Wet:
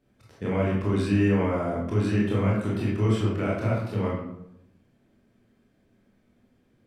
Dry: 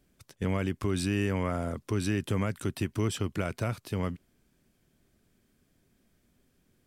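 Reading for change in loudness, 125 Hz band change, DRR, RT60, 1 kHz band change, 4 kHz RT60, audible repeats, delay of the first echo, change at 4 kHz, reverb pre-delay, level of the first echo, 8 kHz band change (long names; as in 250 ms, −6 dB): +6.0 dB, +6.0 dB, −6.0 dB, 0.85 s, +5.0 dB, 0.50 s, no echo audible, no echo audible, −1.0 dB, 21 ms, no echo audible, can't be measured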